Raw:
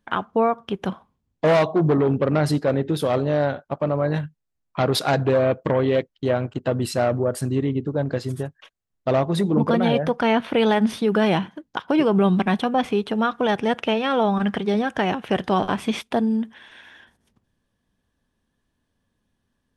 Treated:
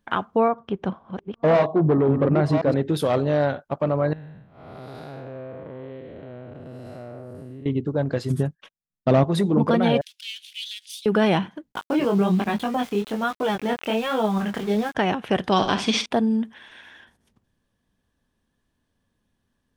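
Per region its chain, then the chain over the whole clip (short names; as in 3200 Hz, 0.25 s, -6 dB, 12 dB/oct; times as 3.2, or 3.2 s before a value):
0.48–2.74 reverse delay 0.534 s, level -6 dB + LPF 6600 Hz + high shelf 2100 Hz -10 dB
4.13–7.66 time blur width 0.288 s + bell 7000 Hz -11 dB 1.5 oct + compressor 2.5:1, threshold -41 dBFS
8.3–9.24 gate -51 dBFS, range -15 dB + bell 190 Hz +11.5 dB 1.1 oct
10.01–11.06 half-wave gain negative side -7 dB + steep high-pass 2900 Hz + high shelf 5200 Hz +5.5 dB
11.72–14.95 sample gate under -32.5 dBFS + chorus 1.2 Hz, delay 18.5 ms, depth 6.7 ms
15.52–16.06 LPF 7200 Hz + bell 5000 Hz +14 dB 1.5 oct + flutter echo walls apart 10.7 m, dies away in 0.36 s
whole clip: dry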